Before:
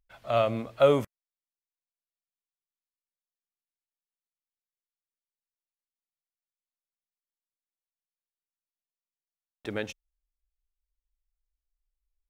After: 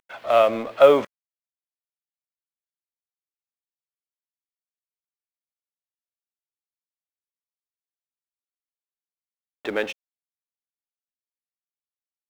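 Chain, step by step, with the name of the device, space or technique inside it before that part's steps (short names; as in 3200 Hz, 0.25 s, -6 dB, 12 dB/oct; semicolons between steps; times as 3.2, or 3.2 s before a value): phone line with mismatched companding (BPF 360–3300 Hz; G.711 law mismatch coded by mu); gain +8 dB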